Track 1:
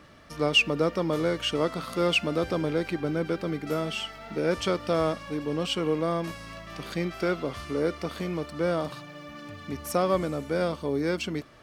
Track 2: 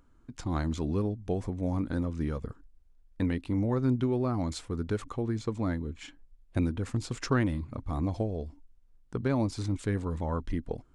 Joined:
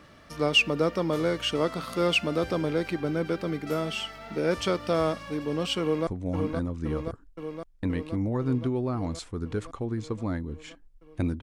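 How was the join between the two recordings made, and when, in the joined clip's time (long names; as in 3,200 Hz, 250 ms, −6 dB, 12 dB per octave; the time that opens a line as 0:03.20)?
track 1
0:05.81–0:06.07: delay throw 520 ms, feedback 75%, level −5 dB
0:06.07: continue with track 2 from 0:01.44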